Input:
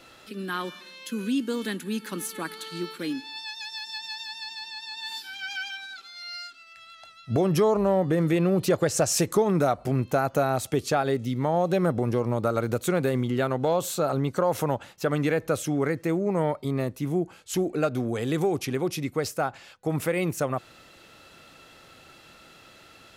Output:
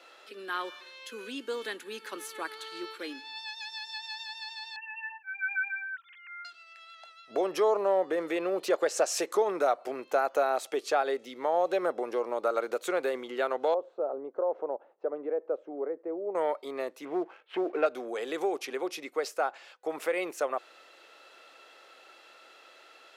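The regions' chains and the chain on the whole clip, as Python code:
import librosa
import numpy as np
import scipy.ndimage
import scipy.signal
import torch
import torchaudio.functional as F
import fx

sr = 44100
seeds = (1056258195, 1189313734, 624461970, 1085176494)

y = fx.chain(x, sr, fx.sine_speech(),
    fx.highpass(hz=710.0, slope=12),
    fx.tilt_eq(slope=3.5), at=(4.76, 6.45))
y = fx.chain(y, sr, fx.cheby1_lowpass(hz=530.0, order=2),
    fx.low_shelf(hz=160.0, db=-12.0), at=(13.74, 16.35))
y = fx.chain(y, sr, fx.cheby2_lowpass(hz=6700.0, order=4, stop_db=50),
    fx.leveller(passes=1), at=(17.05, 17.86))
y = scipy.signal.sosfilt(scipy.signal.butter(4, 400.0, 'highpass', fs=sr, output='sos'), y)
y = fx.high_shelf(y, sr, hz=7000.0, db=-11.5)
y = y * 10.0 ** (-1.5 / 20.0)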